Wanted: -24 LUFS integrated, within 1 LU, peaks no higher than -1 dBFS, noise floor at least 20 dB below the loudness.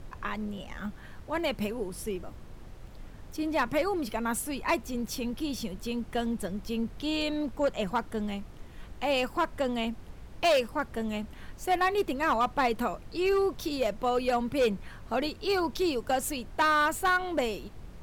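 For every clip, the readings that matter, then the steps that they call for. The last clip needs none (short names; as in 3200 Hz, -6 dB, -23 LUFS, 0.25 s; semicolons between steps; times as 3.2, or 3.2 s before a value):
clipped 1.0%; flat tops at -20.0 dBFS; noise floor -47 dBFS; noise floor target -50 dBFS; loudness -30.0 LUFS; peak -20.0 dBFS; loudness target -24.0 LUFS
-> clip repair -20 dBFS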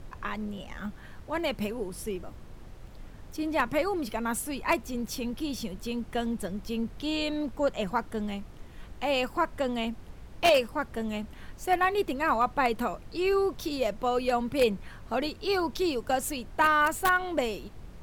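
clipped 0.0%; noise floor -47 dBFS; noise floor target -50 dBFS
-> noise print and reduce 6 dB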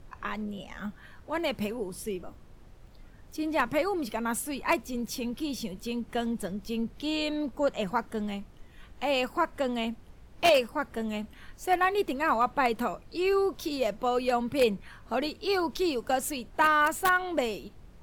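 noise floor -52 dBFS; loudness -29.5 LUFS; peak -11.0 dBFS; loudness target -24.0 LUFS
-> gain +5.5 dB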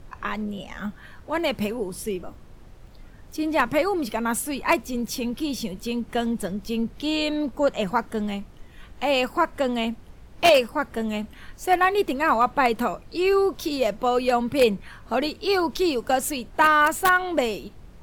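loudness -24.0 LUFS; peak -5.5 dBFS; noise floor -47 dBFS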